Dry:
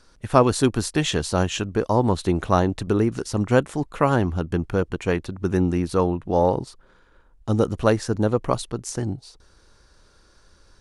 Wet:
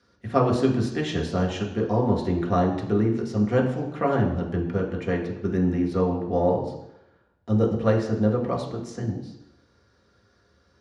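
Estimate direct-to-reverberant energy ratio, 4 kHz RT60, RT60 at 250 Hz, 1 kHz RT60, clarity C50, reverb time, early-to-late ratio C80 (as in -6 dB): -1.0 dB, 0.95 s, 0.80 s, 0.85 s, 7.0 dB, 0.85 s, 9.5 dB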